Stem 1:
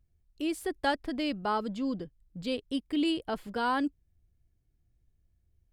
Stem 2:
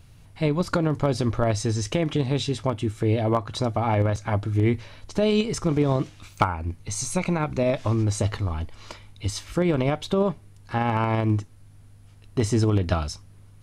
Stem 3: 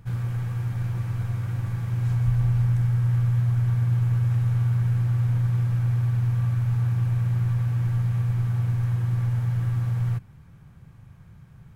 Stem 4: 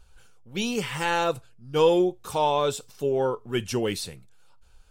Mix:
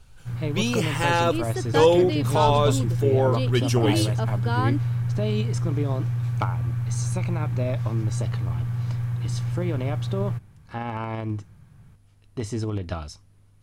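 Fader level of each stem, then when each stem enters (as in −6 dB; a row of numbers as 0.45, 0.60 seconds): +1.5, −7.0, −3.0, +2.5 decibels; 0.90, 0.00, 0.20, 0.00 seconds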